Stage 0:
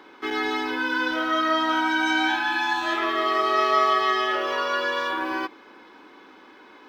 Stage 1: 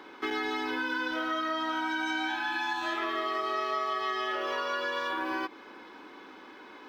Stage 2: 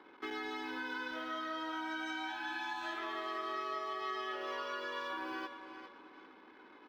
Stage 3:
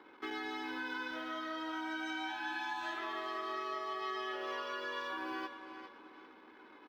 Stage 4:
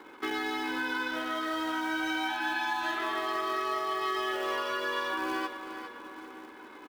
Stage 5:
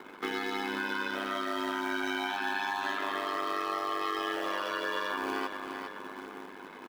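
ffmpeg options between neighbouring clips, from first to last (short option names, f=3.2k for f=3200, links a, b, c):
-af "acompressor=threshold=-29dB:ratio=6"
-filter_complex "[0:a]asplit=2[a][b];[b]aecho=0:1:406|812|1218:0.335|0.104|0.0322[c];[a][c]amix=inputs=2:normalize=0,anlmdn=0.00631,volume=-9dB"
-filter_complex "[0:a]asplit=2[a][b];[b]adelay=13,volume=-12dB[c];[a][c]amix=inputs=2:normalize=0"
-filter_complex "[0:a]asplit=2[a][b];[b]adelay=991.3,volume=-15dB,highshelf=f=4k:g=-22.3[c];[a][c]amix=inputs=2:normalize=0,acrossover=split=810[d][e];[d]acrusher=bits=3:mode=log:mix=0:aa=0.000001[f];[f][e]amix=inputs=2:normalize=0,volume=8dB"
-filter_complex "[0:a]asplit=2[a][b];[b]alimiter=level_in=6dB:limit=-24dB:level=0:latency=1:release=88,volume=-6dB,volume=2.5dB[c];[a][c]amix=inputs=2:normalize=0,aeval=exprs='val(0)*sin(2*PI*49*n/s)':c=same,volume=-2.5dB"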